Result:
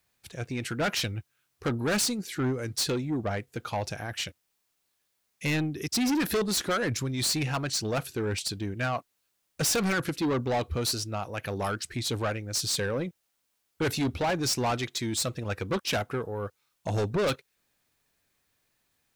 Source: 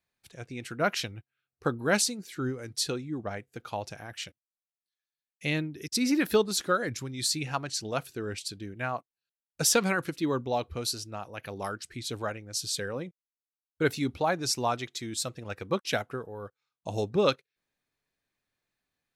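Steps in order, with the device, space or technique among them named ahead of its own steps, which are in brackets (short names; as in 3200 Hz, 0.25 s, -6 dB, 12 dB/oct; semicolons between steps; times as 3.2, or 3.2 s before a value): open-reel tape (soft clip -30.5 dBFS, distortion -6 dB; bell 78 Hz +4 dB 1.03 oct; white noise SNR 46 dB); gain +7 dB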